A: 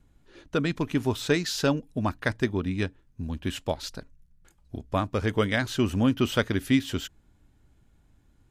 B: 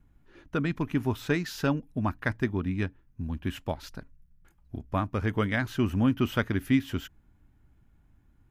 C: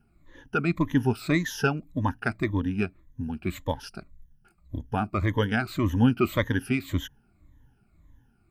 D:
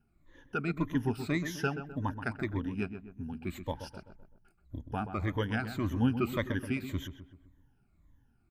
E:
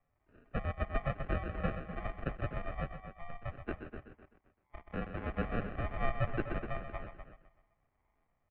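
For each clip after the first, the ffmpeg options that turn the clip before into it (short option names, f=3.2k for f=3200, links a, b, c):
-af "equalizer=f=500:t=o:w=1:g=-6,equalizer=f=4k:t=o:w=1:g=-8,equalizer=f=8k:t=o:w=1:g=-10"
-af "afftfilt=real='re*pow(10,17/40*sin(2*PI*(1.1*log(max(b,1)*sr/1024/100)/log(2)-(-1.8)*(pts-256)/sr)))':imag='im*pow(10,17/40*sin(2*PI*(1.1*log(max(b,1)*sr/1024/100)/log(2)-(-1.8)*(pts-256)/sr)))':win_size=1024:overlap=0.75"
-filter_complex "[0:a]asplit=2[a][b];[b]adelay=128,lowpass=f=1.7k:p=1,volume=-9dB,asplit=2[c][d];[d]adelay=128,lowpass=f=1.7k:p=1,volume=0.48,asplit=2[e][f];[f]adelay=128,lowpass=f=1.7k:p=1,volume=0.48,asplit=2[g][h];[h]adelay=128,lowpass=f=1.7k:p=1,volume=0.48,asplit=2[i][j];[j]adelay=128,lowpass=f=1.7k:p=1,volume=0.48[k];[a][c][e][g][i][k]amix=inputs=6:normalize=0,volume=-7.5dB"
-filter_complex "[0:a]acrusher=samples=37:mix=1:aa=0.000001,asplit=2[a][b];[b]adelay=250,highpass=300,lowpass=3.4k,asoftclip=type=hard:threshold=-24.5dB,volume=-8dB[c];[a][c]amix=inputs=2:normalize=0,highpass=f=230:t=q:w=0.5412,highpass=f=230:t=q:w=1.307,lowpass=f=2.7k:t=q:w=0.5176,lowpass=f=2.7k:t=q:w=0.7071,lowpass=f=2.7k:t=q:w=1.932,afreqshift=-250"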